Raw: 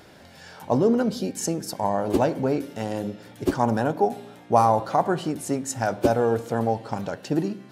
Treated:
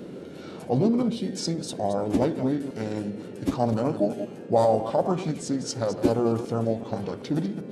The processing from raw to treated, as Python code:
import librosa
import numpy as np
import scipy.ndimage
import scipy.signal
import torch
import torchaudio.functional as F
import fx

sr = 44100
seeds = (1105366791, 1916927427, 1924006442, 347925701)

y = fx.reverse_delay(x, sr, ms=129, wet_db=-10.5)
y = fx.formant_shift(y, sr, semitones=-4)
y = fx.dmg_noise_band(y, sr, seeds[0], low_hz=150.0, high_hz=500.0, level_db=-38.0)
y = y * librosa.db_to_amplitude(-2.0)